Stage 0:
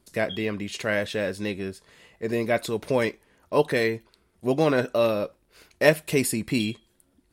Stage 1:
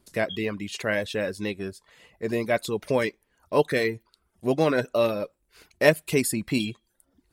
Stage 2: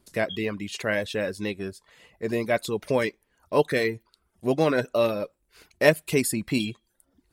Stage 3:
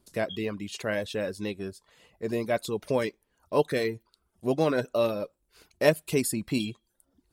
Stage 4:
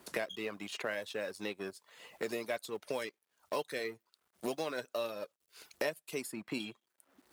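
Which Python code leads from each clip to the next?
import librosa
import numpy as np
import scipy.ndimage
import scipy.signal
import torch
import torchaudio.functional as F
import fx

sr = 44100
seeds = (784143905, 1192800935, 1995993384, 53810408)

y1 = fx.dereverb_blind(x, sr, rt60_s=0.52)
y2 = y1
y3 = fx.peak_eq(y2, sr, hz=2000.0, db=-5.0, octaves=0.77)
y3 = F.gain(torch.from_numpy(y3), -2.5).numpy()
y4 = fx.law_mismatch(y3, sr, coded='A')
y4 = fx.highpass(y4, sr, hz=720.0, slope=6)
y4 = fx.band_squash(y4, sr, depth_pct=100)
y4 = F.gain(torch.from_numpy(y4), -5.0).numpy()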